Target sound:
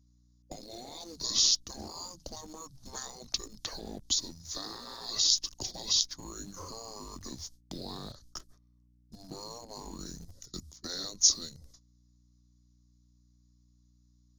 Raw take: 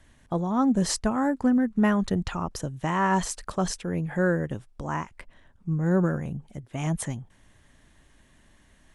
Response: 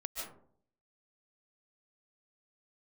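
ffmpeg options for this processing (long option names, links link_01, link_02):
-filter_complex "[0:a]agate=range=-32dB:threshold=-45dB:ratio=16:detection=peak,afftfilt=real='re*lt(hypot(re,im),0.1)':imag='im*lt(hypot(re,im),0.1)':win_size=1024:overlap=0.75,adynamicequalizer=threshold=0.00158:dfrequency=220:dqfactor=1.6:tfrequency=220:tqfactor=1.6:attack=5:release=100:ratio=0.375:range=2:mode=cutabove:tftype=bell,acrossover=split=480[link_01][link_02];[link_02]acompressor=threshold=-46dB:ratio=4[link_03];[link_01][link_03]amix=inputs=2:normalize=0,acrossover=split=170[link_04][link_05];[link_05]aexciter=amount=14.2:drive=5.7:freq=5900[link_06];[link_04][link_06]amix=inputs=2:normalize=0,asetrate=27430,aresample=44100,asplit=2[link_07][link_08];[link_08]acrusher=bits=6:mix=0:aa=0.000001,volume=-12dB[link_09];[link_07][link_09]amix=inputs=2:normalize=0,aeval=exprs='val(0)+0.000891*(sin(2*PI*60*n/s)+sin(2*PI*2*60*n/s)/2+sin(2*PI*3*60*n/s)/3+sin(2*PI*4*60*n/s)/4+sin(2*PI*5*60*n/s)/5)':channel_layout=same,volume=-2.5dB"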